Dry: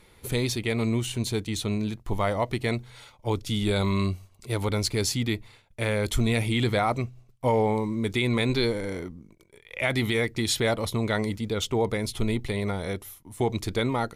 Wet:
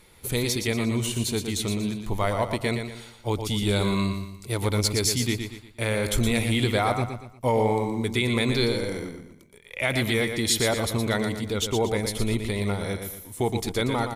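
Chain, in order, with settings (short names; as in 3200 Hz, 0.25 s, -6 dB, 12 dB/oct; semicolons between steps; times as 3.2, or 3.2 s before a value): high shelf 5500 Hz +6.5 dB; feedback echo 0.118 s, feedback 38%, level -7 dB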